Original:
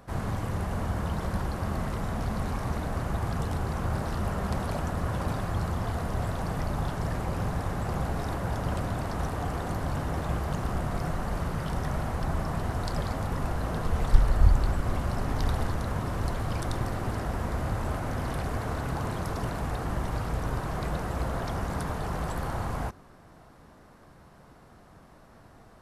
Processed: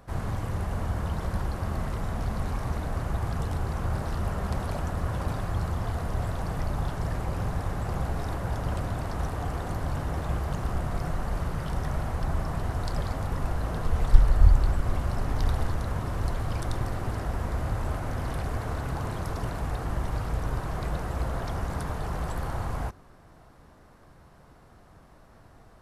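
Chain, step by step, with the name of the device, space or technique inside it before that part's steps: low shelf boost with a cut just above (low shelf 89 Hz +5.5 dB; bell 210 Hz -2.5 dB 0.77 oct); gain -1.5 dB

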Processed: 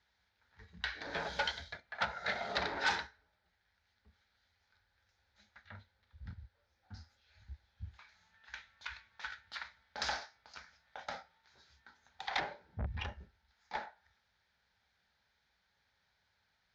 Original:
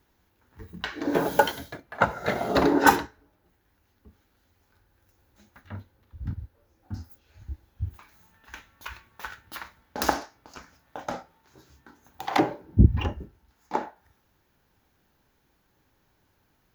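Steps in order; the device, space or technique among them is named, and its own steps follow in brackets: 0.75–1.76 bell 60 Hz +11 dB 1.1 oct; scooped metal amplifier (tube stage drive 21 dB, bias 0.4; speaker cabinet 90–4500 Hz, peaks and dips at 91 Hz -5 dB, 130 Hz -9 dB, 230 Hz +4 dB, 1100 Hz -8 dB, 2800 Hz -9 dB; passive tone stack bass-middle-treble 10-0-10); gain +5 dB

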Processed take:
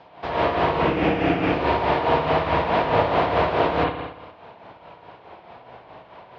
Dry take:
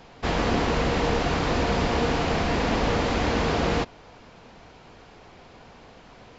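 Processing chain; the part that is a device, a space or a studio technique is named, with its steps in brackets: 0.82–1.53 thirty-one-band EQ 200 Hz +10 dB, 315 Hz +11 dB, 630 Hz -4 dB, 1000 Hz -12 dB, 2500 Hz +6 dB, 4000 Hz -9 dB; combo amplifier with spring reverb and tremolo (spring tank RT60 1 s, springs 57 ms, chirp 30 ms, DRR -4.5 dB; tremolo 4.7 Hz, depth 53%; speaker cabinet 100–4200 Hz, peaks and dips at 220 Hz -9 dB, 640 Hz +8 dB, 960 Hz +7 dB); gain -2 dB

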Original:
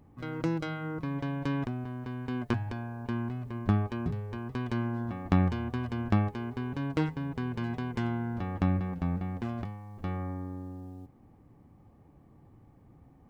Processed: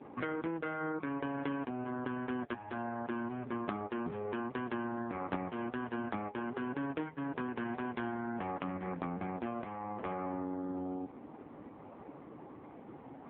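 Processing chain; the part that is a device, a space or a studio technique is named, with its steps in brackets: voicemail (BPF 340–3100 Hz; compressor 8:1, threshold -51 dBFS, peak gain reduction 23.5 dB; gain +17.5 dB; AMR-NB 4.75 kbps 8000 Hz)

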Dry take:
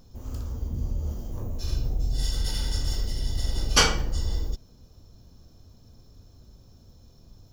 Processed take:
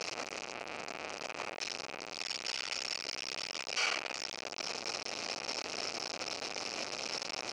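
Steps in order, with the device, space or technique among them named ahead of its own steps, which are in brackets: home computer beeper (infinite clipping; speaker cabinet 710–5700 Hz, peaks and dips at 1000 Hz -6 dB, 1700 Hz -6 dB, 2500 Hz +8 dB, 3500 Hz -9 dB)

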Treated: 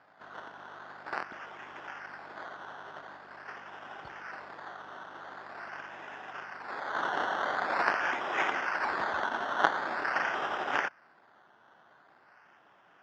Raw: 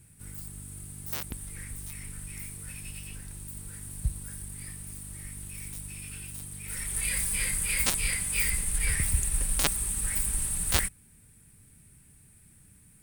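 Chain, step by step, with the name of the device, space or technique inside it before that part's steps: circuit-bent sampling toy (decimation with a swept rate 14×, swing 60% 0.45 Hz; speaker cabinet 460–4100 Hz, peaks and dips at 490 Hz -6 dB, 760 Hz +3 dB, 1500 Hz +6 dB, 2300 Hz -6 dB, 3900 Hz -9 dB)

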